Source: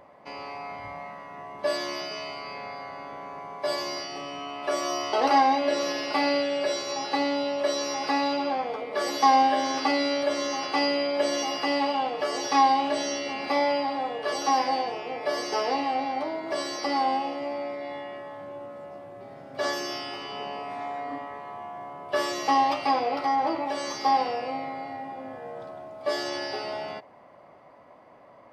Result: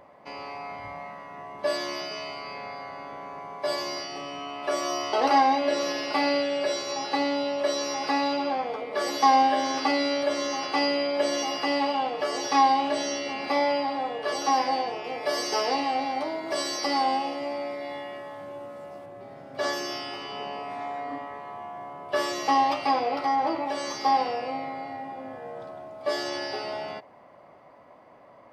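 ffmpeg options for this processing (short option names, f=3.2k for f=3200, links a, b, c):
-filter_complex "[0:a]asettb=1/sr,asplit=3[a][b][c];[a]atrim=end=15.044[d];[b]atrim=start=15.04:end=19.06,asetpts=PTS-STARTPTS,afade=t=in:d=0.004:c=qsin,afade=t=out:st=4.016:d=0.004:c=qsin,highshelf=f=4.6k:g=9[e];[c]atrim=start=19.056[f];[d][e]acrossfade=d=0.004:c1=hsin:c2=qsin[g];[g][f]acrossfade=d=0.004:c1=qsin:c2=hsin"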